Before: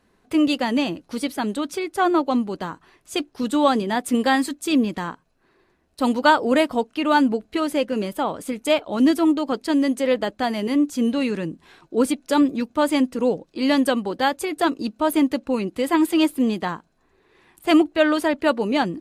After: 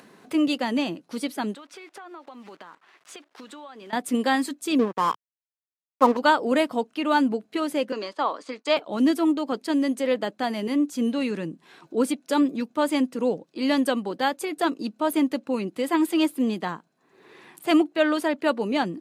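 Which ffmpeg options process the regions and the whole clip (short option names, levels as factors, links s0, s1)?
-filter_complex "[0:a]asettb=1/sr,asplit=3[s0][s1][s2];[s0]atrim=end=1.544[s3];[s1]atrim=start=1.54:end=3.93,asetpts=PTS-STARTPTS,afade=t=in:d=0.004:c=qsin,afade=t=out:st=2.386:d=0.004:c=qsin,acrusher=bits=8:dc=4:mix=0:aa=0.000001,bandpass=f=1600:t=q:w=0.65,acompressor=threshold=0.0141:ratio=6:attack=3.2:release=140:knee=1:detection=peak[s4];[s2]atrim=start=3.926[s5];[s3][s4]acrossfade=d=0.004:c1=hsin:c2=qsin[s6];[s6][s5]acrossfade=d=0.004:c1=qsin:c2=hsin,asettb=1/sr,asplit=3[s7][s8][s9];[s7]atrim=end=4.794[s10];[s8]atrim=start=4.79:end=6.17,asetpts=PTS-STARTPTS,afade=t=in:d=0.004:c=qsin,afade=t=out:st=1.376:d=0.004:c=qsin,lowpass=f=1100:t=q:w=9.1,equalizer=f=470:t=o:w=0.67:g=10,aeval=exprs='sgn(val(0))*max(abs(val(0))-0.0398,0)':c=same[s11];[s9]atrim=start=6.166[s12];[s10][s11]acrossfade=d=0.004:c1=hsin:c2=qsin[s13];[s13][s12]acrossfade=d=0.004:c1=qsin:c2=hsin,asettb=1/sr,asplit=3[s14][s15][s16];[s14]atrim=end=7.924[s17];[s15]atrim=start=7.92:end=8.77,asetpts=PTS-STARTPTS,afade=t=in:d=0.004:c=qsin,afade=t=out:st=0.846:d=0.004:c=qsin,agate=range=0.0224:threshold=0.0158:ratio=3:release=100:detection=peak,highpass=f=300:w=0.5412,highpass=f=300:w=1.3066,equalizer=f=370:t=q:w=4:g=-4,equalizer=f=1100:t=q:w=4:g=9,equalizer=f=1800:t=q:w=4:g=4,equalizer=f=4500:t=q:w=4:g=9,lowpass=f=6600:w=0.5412,lowpass=f=6600:w=1.3066[s18];[s16]atrim=start=8.766[s19];[s17][s18]acrossfade=d=0.004:c1=hsin:c2=qsin[s20];[s20][s19]acrossfade=d=0.004:c1=qsin:c2=hsin,highpass=f=140:w=0.5412,highpass=f=140:w=1.3066,acompressor=mode=upward:threshold=0.0178:ratio=2.5,volume=0.668"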